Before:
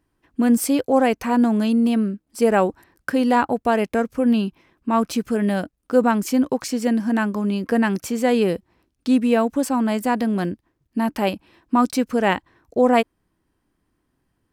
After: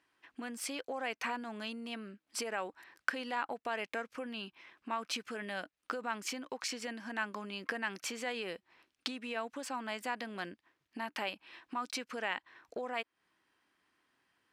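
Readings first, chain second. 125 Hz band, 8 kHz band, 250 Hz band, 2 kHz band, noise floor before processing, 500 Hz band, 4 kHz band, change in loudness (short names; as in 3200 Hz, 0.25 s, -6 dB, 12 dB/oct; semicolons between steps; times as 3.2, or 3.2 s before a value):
-26.5 dB, -11.0 dB, -26.0 dB, -9.0 dB, -73 dBFS, -21.0 dB, -7.0 dB, -19.0 dB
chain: limiter -11.5 dBFS, peak gain reduction 6.5 dB; compressor 6:1, threshold -31 dBFS, peak gain reduction 15.5 dB; band-pass 2500 Hz, Q 0.82; gain +6 dB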